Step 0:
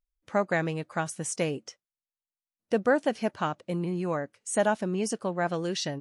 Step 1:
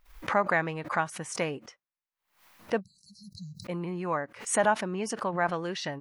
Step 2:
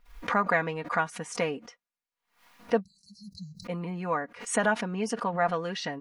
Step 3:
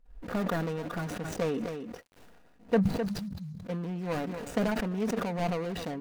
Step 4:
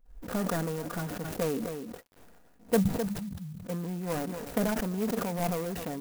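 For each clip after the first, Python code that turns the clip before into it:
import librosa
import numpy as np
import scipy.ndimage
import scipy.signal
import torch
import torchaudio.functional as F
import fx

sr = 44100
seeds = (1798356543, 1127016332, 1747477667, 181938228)

y1 = fx.spec_erase(x, sr, start_s=2.8, length_s=0.85, low_hz=210.0, high_hz=3900.0)
y1 = fx.graphic_eq(y1, sr, hz=(1000, 2000, 8000), db=(9, 6, -6))
y1 = fx.pre_swell(y1, sr, db_per_s=120.0)
y1 = y1 * 10.0 ** (-4.5 / 20.0)
y2 = fx.high_shelf(y1, sr, hz=9100.0, db=-9.0)
y2 = y2 + 0.61 * np.pad(y2, (int(4.2 * sr / 1000.0), 0))[:len(y2)]
y3 = scipy.ndimage.median_filter(y2, 41, mode='constant')
y3 = y3 + 10.0 ** (-20.0 / 20.0) * np.pad(y3, (int(259 * sr / 1000.0), 0))[:len(y3)]
y3 = fx.sustainer(y3, sr, db_per_s=30.0)
y4 = fx.clock_jitter(y3, sr, seeds[0], jitter_ms=0.064)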